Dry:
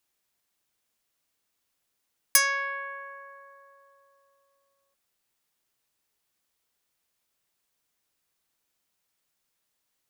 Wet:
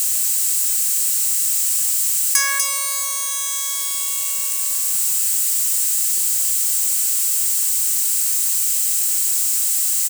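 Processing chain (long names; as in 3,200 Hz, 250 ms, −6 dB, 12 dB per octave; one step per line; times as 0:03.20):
spike at every zero crossing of −22 dBFS
high-pass filter 720 Hz 24 dB per octave
parametric band 7,900 Hz +12 dB 0.46 octaves
notch filter 3,500 Hz, Q 18
single-tap delay 245 ms −7.5 dB
envelope flattener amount 50%
level −1.5 dB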